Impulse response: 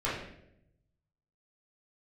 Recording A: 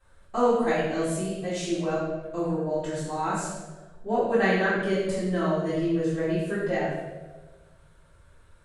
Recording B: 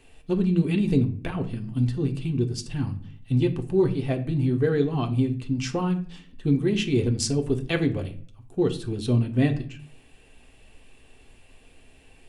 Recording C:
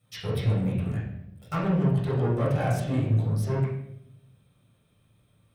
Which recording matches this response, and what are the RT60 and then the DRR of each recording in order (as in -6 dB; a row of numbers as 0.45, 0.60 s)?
C; 1.3, 0.50, 0.75 s; -11.5, 4.0, -9.5 dB